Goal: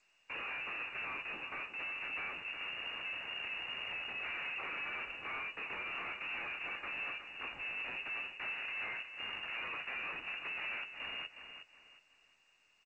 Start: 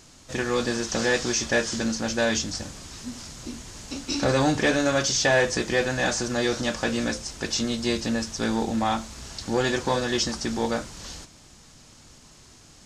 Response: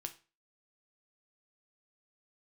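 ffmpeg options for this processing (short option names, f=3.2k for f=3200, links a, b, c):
-filter_complex "[0:a]afreqshift=21,acompressor=threshold=-37dB:ratio=10,aresample=11025,aeval=exprs='(mod(39.8*val(0)+1,2)-1)/39.8':c=same,aresample=44100,agate=range=-36dB:threshold=-43dB:ratio=16:detection=peak,aeval=exprs='(tanh(708*val(0)+0.05)-tanh(0.05))/708':c=same,aecho=1:1:364|728|1092|1456:0.355|0.11|0.0341|0.0106,asplit=2[a][b];[1:a]atrim=start_sample=2205,atrim=end_sample=6615,highshelf=f=9.4k:g=11.5[c];[b][c]afir=irnorm=-1:irlink=0,volume=-12.5dB[d];[a][d]amix=inputs=2:normalize=0,lowpass=f=2.5k:t=q:w=0.5098,lowpass=f=2.5k:t=q:w=0.6013,lowpass=f=2.5k:t=q:w=0.9,lowpass=f=2.5k:t=q:w=2.563,afreqshift=-2900,volume=15.5dB" -ar 16000 -c:a g722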